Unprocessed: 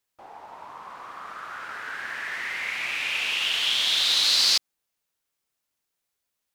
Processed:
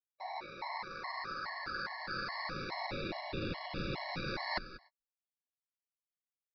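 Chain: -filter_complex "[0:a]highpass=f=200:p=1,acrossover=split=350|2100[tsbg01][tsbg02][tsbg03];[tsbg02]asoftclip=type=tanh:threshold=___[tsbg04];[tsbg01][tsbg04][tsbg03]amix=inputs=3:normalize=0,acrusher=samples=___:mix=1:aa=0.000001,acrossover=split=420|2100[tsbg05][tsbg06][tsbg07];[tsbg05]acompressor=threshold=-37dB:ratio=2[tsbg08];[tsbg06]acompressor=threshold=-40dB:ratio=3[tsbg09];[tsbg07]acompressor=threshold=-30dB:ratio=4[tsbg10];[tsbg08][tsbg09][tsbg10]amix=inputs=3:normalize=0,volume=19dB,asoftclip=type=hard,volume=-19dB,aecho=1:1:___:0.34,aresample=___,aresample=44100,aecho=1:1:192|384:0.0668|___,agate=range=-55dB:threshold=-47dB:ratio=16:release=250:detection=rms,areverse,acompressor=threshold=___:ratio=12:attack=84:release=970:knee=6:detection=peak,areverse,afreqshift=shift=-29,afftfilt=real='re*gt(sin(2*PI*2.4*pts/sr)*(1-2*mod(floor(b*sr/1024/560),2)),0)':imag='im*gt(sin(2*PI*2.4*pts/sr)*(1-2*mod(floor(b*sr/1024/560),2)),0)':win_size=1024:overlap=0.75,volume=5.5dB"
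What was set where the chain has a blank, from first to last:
-36.5dB, 14, 5.3, 11025, 0.0167, -39dB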